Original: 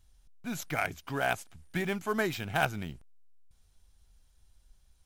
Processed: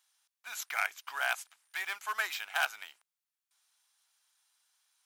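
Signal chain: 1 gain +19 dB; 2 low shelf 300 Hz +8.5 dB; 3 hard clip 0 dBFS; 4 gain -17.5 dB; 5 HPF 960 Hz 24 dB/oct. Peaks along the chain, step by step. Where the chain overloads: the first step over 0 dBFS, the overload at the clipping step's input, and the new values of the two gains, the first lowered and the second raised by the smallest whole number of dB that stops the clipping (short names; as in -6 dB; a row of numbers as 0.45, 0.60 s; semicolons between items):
+6.0, +7.5, 0.0, -17.5, -15.0 dBFS; step 1, 7.5 dB; step 1 +11 dB, step 4 -9.5 dB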